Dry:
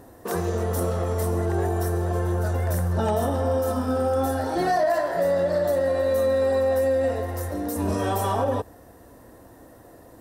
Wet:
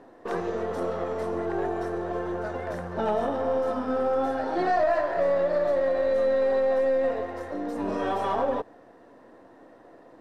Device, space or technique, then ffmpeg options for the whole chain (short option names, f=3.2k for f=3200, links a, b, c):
crystal radio: -af "highpass=240,lowpass=3.2k,aeval=exprs='if(lt(val(0),0),0.708*val(0),val(0))':c=same"